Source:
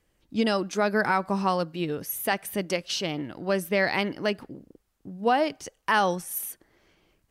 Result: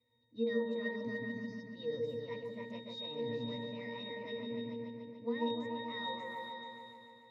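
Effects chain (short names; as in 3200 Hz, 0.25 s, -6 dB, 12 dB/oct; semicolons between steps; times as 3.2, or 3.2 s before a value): weighting filter D; spectral delete 0.96–1.71, 280–3600 Hz; high shelf 5700 Hz -11.5 dB; reverse; compressor, threshold -32 dBFS, peak gain reduction 16 dB; reverse; formant shift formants +3 st; octave resonator A#, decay 0.57 s; on a send: repeats that get brighter 0.145 s, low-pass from 750 Hz, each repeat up 2 oct, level 0 dB; on the sum: gain +15.5 dB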